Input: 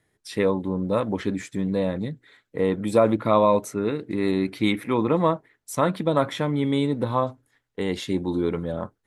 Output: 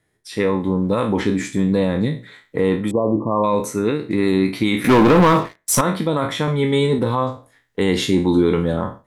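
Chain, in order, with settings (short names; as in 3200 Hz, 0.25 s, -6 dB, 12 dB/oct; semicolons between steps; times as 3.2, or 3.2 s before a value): spectral trails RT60 0.34 s; AGC gain up to 10.5 dB; limiter -7 dBFS, peak gain reduction 6 dB; dynamic EQ 620 Hz, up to -6 dB, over -35 dBFS, Q 4.1; 2.91–3.44 brick-wall FIR low-pass 1200 Hz; 4.84–5.81 sample leveller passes 3; 6.47–6.99 comb 5 ms, depth 93%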